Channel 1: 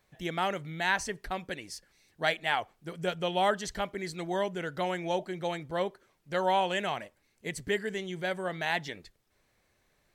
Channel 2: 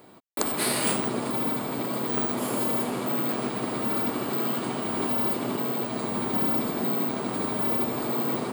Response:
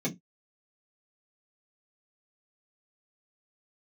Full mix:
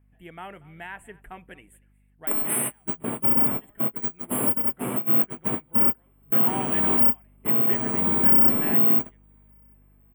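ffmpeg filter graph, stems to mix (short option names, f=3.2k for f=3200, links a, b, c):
-filter_complex "[0:a]bandreject=f=560:w=12,alimiter=limit=-18.5dB:level=0:latency=1:release=316,aeval=exprs='val(0)+0.00316*(sin(2*PI*50*n/s)+sin(2*PI*2*50*n/s)/2+sin(2*PI*3*50*n/s)/3+sin(2*PI*4*50*n/s)/4+sin(2*PI*5*50*n/s)/5)':c=same,volume=2dB,afade=t=out:st=2.45:d=0.72:silence=0.334965,afade=t=in:st=5.89:d=0.61:silence=0.266073,asplit=3[a][b][c];[b]volume=-23dB[d];[1:a]bass=f=250:g=5,treble=f=4k:g=8,adelay=1900,volume=-3.5dB[e];[c]apad=whole_len=459839[f];[e][f]sidechaingate=range=-41dB:threshold=-52dB:ratio=16:detection=peak[g];[d]aecho=0:1:235:1[h];[a][g][h]amix=inputs=3:normalize=0,highshelf=f=11k:g=4,dynaudnorm=f=110:g=11:m=3dB,asuperstop=centerf=5100:order=8:qfactor=0.97"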